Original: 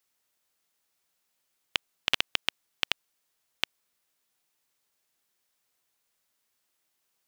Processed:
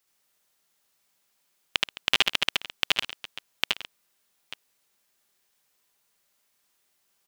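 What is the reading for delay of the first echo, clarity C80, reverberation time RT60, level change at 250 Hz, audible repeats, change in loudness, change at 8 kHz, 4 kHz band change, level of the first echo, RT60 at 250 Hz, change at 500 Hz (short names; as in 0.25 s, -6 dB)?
72 ms, none, none, +5.0 dB, 4, +5.0 dB, +5.5 dB, +5.5 dB, -3.0 dB, none, +5.5 dB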